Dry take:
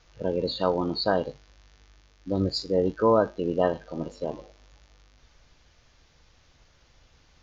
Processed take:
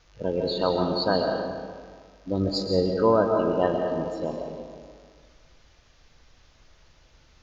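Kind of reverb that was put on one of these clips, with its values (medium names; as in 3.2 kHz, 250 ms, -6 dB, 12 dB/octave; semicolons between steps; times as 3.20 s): algorithmic reverb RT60 1.8 s, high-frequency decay 0.7×, pre-delay 90 ms, DRR 2.5 dB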